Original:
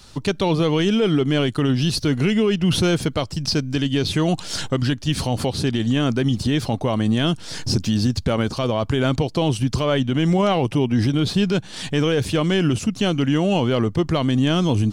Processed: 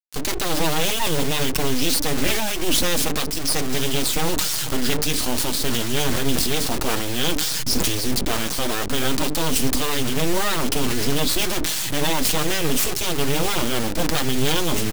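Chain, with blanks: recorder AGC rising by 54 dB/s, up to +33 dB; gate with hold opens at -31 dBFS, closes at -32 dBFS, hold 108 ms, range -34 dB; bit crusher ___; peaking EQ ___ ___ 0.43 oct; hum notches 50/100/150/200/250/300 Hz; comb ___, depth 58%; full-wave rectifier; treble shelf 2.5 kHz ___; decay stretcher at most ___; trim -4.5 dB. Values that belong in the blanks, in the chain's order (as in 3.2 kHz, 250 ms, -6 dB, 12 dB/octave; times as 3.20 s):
5-bit, 130 Hz, +6.5 dB, 6.4 ms, +9 dB, 31 dB/s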